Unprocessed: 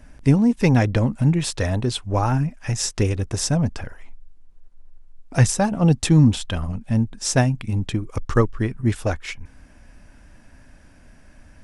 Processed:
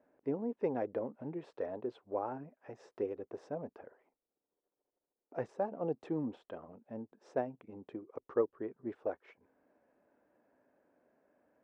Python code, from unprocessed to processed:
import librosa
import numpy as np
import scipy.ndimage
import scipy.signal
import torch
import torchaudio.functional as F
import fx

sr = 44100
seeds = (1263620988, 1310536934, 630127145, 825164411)

y = fx.ladder_bandpass(x, sr, hz=530.0, resonance_pct=40)
y = y * librosa.db_to_amplitude(-2.0)